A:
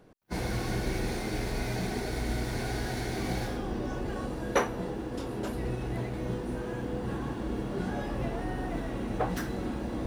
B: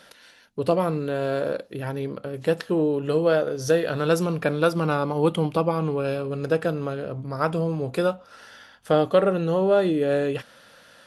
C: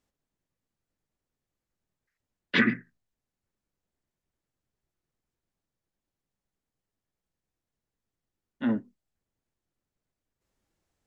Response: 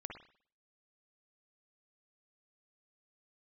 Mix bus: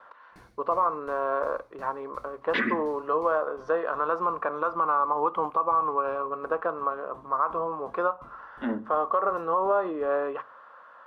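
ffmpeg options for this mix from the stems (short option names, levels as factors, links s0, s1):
-filter_complex "[0:a]aeval=exprs='val(0)*pow(10,-26*if(lt(mod(2.8*n/s,1),2*abs(2.8)/1000),1-mod(2.8*n/s,1)/(2*abs(2.8)/1000),(mod(2.8*n/s,1)-2*abs(2.8)/1000)/(1-2*abs(2.8)/1000))/20)':c=same,volume=0.126[s0];[1:a]lowpass=f=1100:t=q:w=8.7,lowshelf=f=470:g=-11.5,volume=0.944,asplit=2[s1][s2];[s2]volume=0.0841[s3];[2:a]highshelf=f=3100:g=-11.5,volume=1.26,asplit=2[s4][s5];[s5]volume=0.251[s6];[s1][s4]amix=inputs=2:normalize=0,highpass=300,alimiter=limit=0.168:level=0:latency=1:release=112,volume=1[s7];[3:a]atrim=start_sample=2205[s8];[s3][s6]amix=inputs=2:normalize=0[s9];[s9][s8]afir=irnorm=-1:irlink=0[s10];[s0][s7][s10]amix=inputs=3:normalize=0,agate=range=0.0224:threshold=0.00141:ratio=3:detection=peak"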